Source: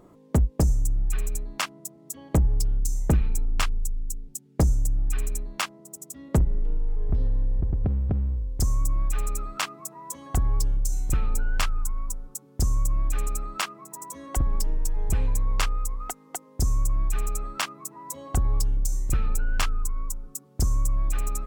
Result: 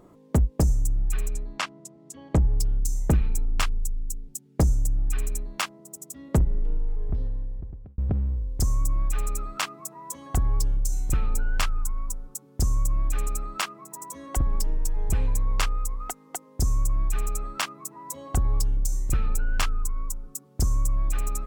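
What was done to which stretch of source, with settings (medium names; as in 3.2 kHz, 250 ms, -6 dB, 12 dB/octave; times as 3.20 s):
1.28–2.58 s: distance through air 60 m
6.77–7.98 s: fade out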